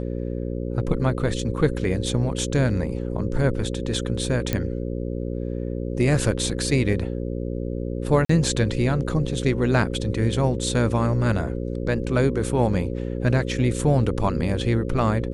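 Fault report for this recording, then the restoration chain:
buzz 60 Hz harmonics 9 -28 dBFS
4.53 s: pop -8 dBFS
8.25–8.29 s: dropout 44 ms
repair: de-click; de-hum 60 Hz, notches 9; interpolate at 8.25 s, 44 ms

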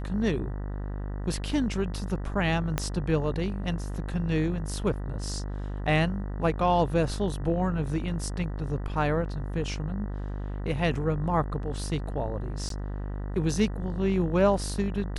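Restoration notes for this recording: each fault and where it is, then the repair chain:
buzz 50 Hz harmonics 39 -33 dBFS
2.78 s: pop -11 dBFS
12.69–12.70 s: dropout 13 ms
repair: de-click; de-hum 50 Hz, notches 39; interpolate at 12.69 s, 13 ms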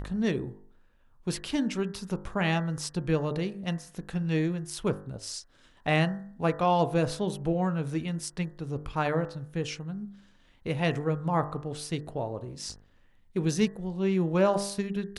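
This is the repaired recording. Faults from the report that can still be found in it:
2.78 s: pop

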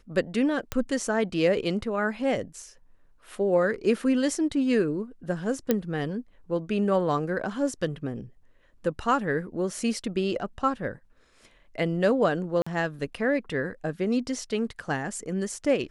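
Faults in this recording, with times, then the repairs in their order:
0.72 s: pop -14 dBFS
5.71 s: pop -9 dBFS
12.62–12.66 s: dropout 45 ms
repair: de-click; interpolate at 12.62 s, 45 ms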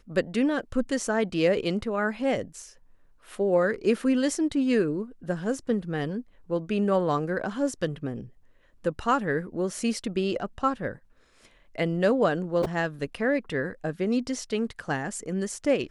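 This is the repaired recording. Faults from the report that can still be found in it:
nothing left

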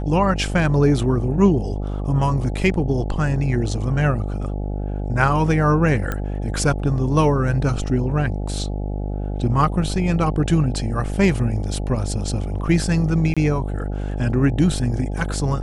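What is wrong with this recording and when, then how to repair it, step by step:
buzz 50 Hz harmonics 17 -25 dBFS
6.12 s: pop -11 dBFS
13.34–13.37 s: dropout 26 ms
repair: de-click; de-hum 50 Hz, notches 17; interpolate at 13.34 s, 26 ms

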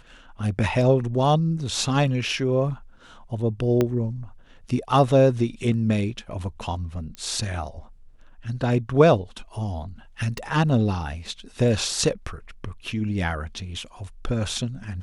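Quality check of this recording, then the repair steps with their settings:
3.81 s: pop -9 dBFS
7.15 s: pop -22 dBFS
10.38 s: pop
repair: de-click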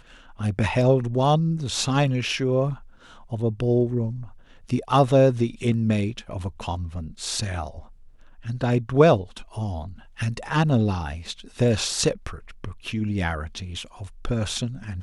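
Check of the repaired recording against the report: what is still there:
3.81 s: pop

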